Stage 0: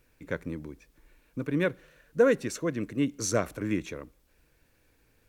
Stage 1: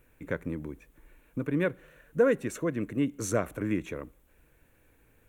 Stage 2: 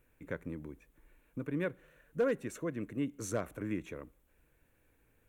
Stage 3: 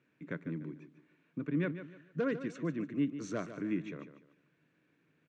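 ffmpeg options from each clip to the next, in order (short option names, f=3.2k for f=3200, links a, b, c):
-filter_complex "[0:a]equalizer=f=4.9k:w=1.8:g=-14.5,asplit=2[a][b];[b]acompressor=threshold=-34dB:ratio=6,volume=0.5dB[c];[a][c]amix=inputs=2:normalize=0,volume=-3dB"
-af "volume=16.5dB,asoftclip=hard,volume=-16.5dB,volume=-7dB"
-af "highpass=f=140:w=0.5412,highpass=f=140:w=1.3066,equalizer=f=160:t=q:w=4:g=8,equalizer=f=300:t=q:w=4:g=4,equalizer=f=510:t=q:w=4:g=-6,equalizer=f=830:t=q:w=4:g=-7,lowpass=f=5.4k:w=0.5412,lowpass=f=5.4k:w=1.3066,aecho=1:1:148|296|444:0.266|0.0825|0.0256"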